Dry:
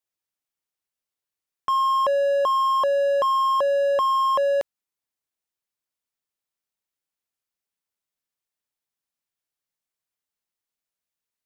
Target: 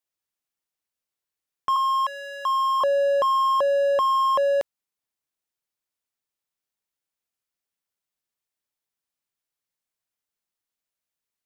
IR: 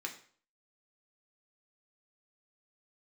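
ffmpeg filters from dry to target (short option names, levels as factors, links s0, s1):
-filter_complex "[0:a]asettb=1/sr,asplit=3[s0][s1][s2];[s0]atrim=end=1.764[s3];[s1]atrim=start=1.76:end=2.81,asetpts=PTS-STARTPTS,afade=t=in:d=0.004:c=qsin,afade=t=out:st=1.046:d=0.004:c=qsin,highpass=f=960:w=0.5412,highpass=f=960:w=1.3066[s4];[s2]atrim=start=2.806[s5];[s3][s4]acrossfade=d=0.004:c1=hsin:c2=qsin[s6];[s6][s5]acrossfade=d=0.004:c1=qsin:c2=hsin"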